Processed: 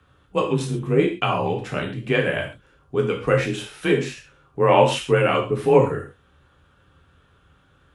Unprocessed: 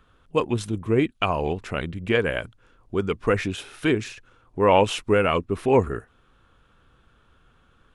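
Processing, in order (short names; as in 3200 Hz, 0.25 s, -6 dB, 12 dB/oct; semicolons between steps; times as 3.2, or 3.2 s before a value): frequency shift +29 Hz; non-linear reverb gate 0.16 s falling, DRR 0 dB; gain -1 dB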